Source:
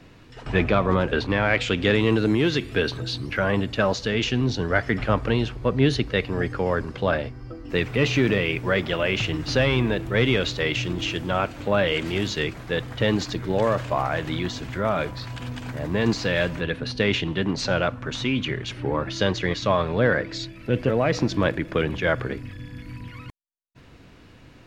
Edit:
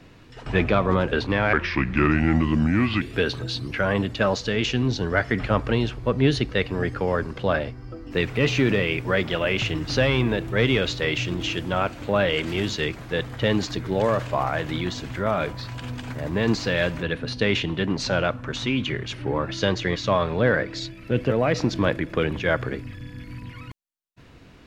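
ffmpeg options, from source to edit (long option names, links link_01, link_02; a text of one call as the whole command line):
ffmpeg -i in.wav -filter_complex "[0:a]asplit=3[link_01][link_02][link_03];[link_01]atrim=end=1.534[link_04];[link_02]atrim=start=1.53:end=2.6,asetpts=PTS-STARTPTS,asetrate=31752,aresample=44100[link_05];[link_03]atrim=start=2.596[link_06];[link_04][link_05]acrossfade=duration=0.004:curve1=hsin:curve2=hsin[link_07];[link_07][link_06]acrossfade=duration=0.004:curve1=hsin:curve2=hsin" out.wav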